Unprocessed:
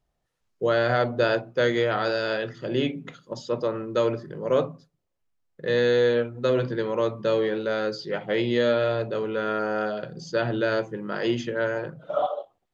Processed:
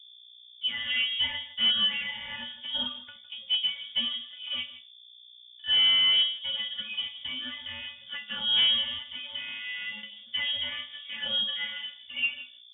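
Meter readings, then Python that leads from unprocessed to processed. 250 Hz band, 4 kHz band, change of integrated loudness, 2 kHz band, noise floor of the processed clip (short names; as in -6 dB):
-21.0 dB, +14.0 dB, -1.5 dB, -3.0 dB, -53 dBFS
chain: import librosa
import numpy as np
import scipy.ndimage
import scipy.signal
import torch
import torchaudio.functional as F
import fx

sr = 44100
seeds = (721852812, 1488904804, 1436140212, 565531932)

p1 = fx.law_mismatch(x, sr, coded='A')
p2 = scipy.signal.sosfilt(scipy.signal.butter(4, 81.0, 'highpass', fs=sr, output='sos'), p1)
p3 = fx.rider(p2, sr, range_db=10, speed_s=2.0)
p4 = p2 + (p3 * librosa.db_to_amplitude(0.0))
p5 = fx.stiff_resonator(p4, sr, f0_hz=240.0, decay_s=0.25, stiffness=0.002)
p6 = fx.add_hum(p5, sr, base_hz=60, snr_db=24)
p7 = np.clip(p6, -10.0 ** (-19.5 / 20.0), 10.0 ** (-19.5 / 20.0))
p8 = fx.vibrato(p7, sr, rate_hz=0.63, depth_cents=11.0)
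p9 = p8 + fx.echo_single(p8, sr, ms=159, db=-15.5, dry=0)
y = fx.freq_invert(p9, sr, carrier_hz=3500)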